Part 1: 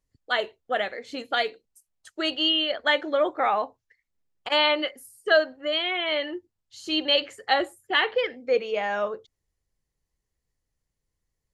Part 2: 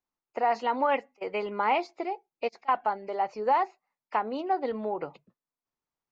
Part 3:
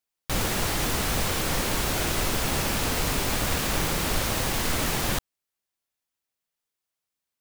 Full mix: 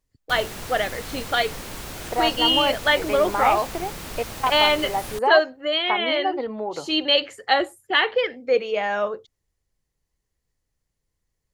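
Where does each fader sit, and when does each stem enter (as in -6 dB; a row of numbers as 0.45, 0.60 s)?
+3.0, +2.5, -9.0 dB; 0.00, 1.75, 0.00 s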